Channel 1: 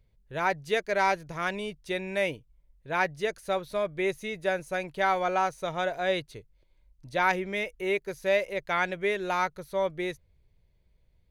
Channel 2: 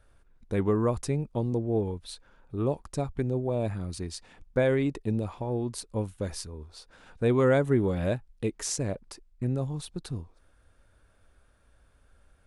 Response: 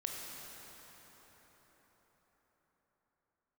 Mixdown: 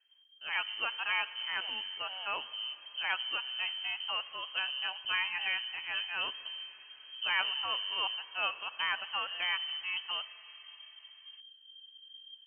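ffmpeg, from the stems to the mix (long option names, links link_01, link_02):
-filter_complex "[0:a]equalizer=frequency=590:width=0.9:gain=-7,adelay=100,volume=-6dB,asplit=2[link_01][link_02];[link_02]volume=-12dB[link_03];[1:a]asubboost=boost=9:cutoff=240,acompressor=threshold=-34dB:ratio=2,volume=-12dB[link_04];[2:a]atrim=start_sample=2205[link_05];[link_03][link_05]afir=irnorm=-1:irlink=0[link_06];[link_01][link_04][link_06]amix=inputs=3:normalize=0,lowpass=frequency=2700:width_type=q:width=0.5098,lowpass=frequency=2700:width_type=q:width=0.6013,lowpass=frequency=2700:width_type=q:width=0.9,lowpass=frequency=2700:width_type=q:width=2.563,afreqshift=-3200"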